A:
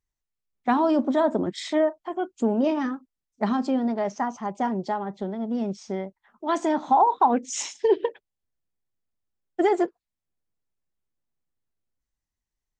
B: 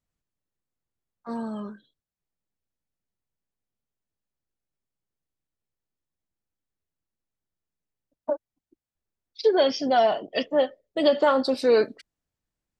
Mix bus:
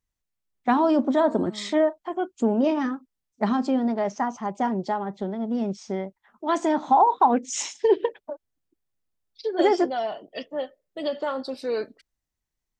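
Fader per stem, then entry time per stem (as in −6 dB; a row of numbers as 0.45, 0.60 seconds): +1.0, −8.0 decibels; 0.00, 0.00 seconds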